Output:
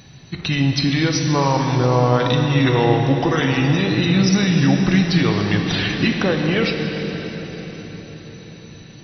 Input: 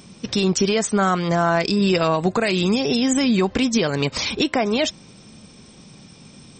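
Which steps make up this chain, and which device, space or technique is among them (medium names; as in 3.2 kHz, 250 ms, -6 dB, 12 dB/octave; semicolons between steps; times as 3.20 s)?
slowed and reverbed (tape speed -27%; reverberation RT60 5.0 s, pre-delay 8 ms, DRR 2.5 dB)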